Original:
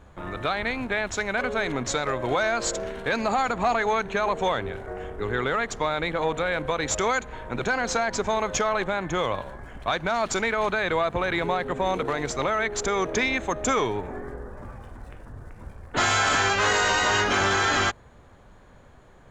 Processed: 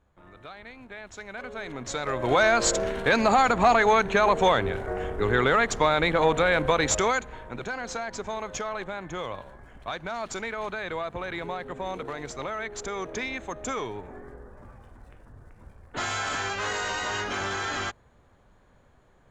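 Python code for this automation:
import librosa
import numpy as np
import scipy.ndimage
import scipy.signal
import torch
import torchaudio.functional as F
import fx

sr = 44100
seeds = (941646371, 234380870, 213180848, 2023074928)

y = fx.gain(x, sr, db=fx.line((0.74, -17.0), (1.78, -8.5), (2.41, 4.0), (6.78, 4.0), (7.67, -8.0)))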